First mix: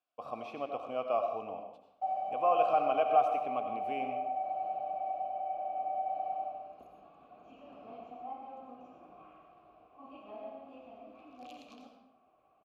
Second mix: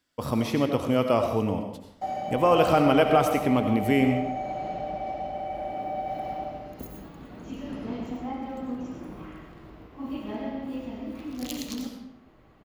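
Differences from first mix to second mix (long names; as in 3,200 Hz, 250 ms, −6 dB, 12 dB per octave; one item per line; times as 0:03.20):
background: add low-shelf EQ 100 Hz −9.5 dB
master: remove formant filter a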